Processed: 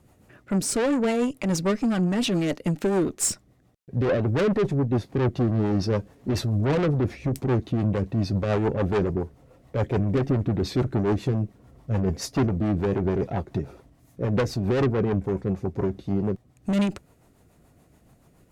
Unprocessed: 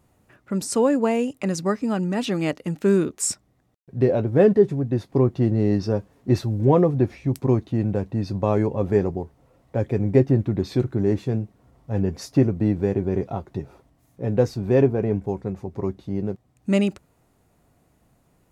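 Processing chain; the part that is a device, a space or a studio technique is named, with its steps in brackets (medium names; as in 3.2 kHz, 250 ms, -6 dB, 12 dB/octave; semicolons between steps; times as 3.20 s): overdriven rotary cabinet (valve stage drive 25 dB, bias 0.3; rotary cabinet horn 7 Hz); trim +7 dB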